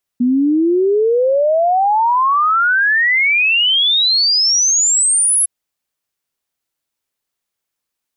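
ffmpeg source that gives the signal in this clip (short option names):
-f lavfi -i "aevalsrc='0.299*clip(min(t,5.26-t)/0.01,0,1)*sin(2*PI*240*5.26/log(11000/240)*(exp(log(11000/240)*t/5.26)-1))':d=5.26:s=44100"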